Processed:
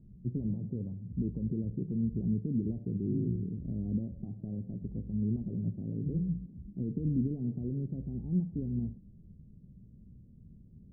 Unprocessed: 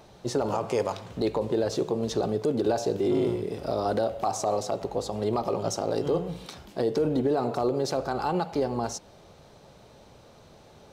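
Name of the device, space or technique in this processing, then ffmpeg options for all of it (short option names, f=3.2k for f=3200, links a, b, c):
the neighbour's flat through the wall: -af "lowpass=f=230:w=0.5412,lowpass=f=230:w=1.3066,lowshelf=f=62:g=8.5,equalizer=f=200:t=o:w=0.53:g=5"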